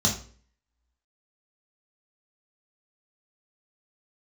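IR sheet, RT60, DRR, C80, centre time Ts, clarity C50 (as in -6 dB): 0.45 s, -2.0 dB, 13.0 dB, 21 ms, 8.5 dB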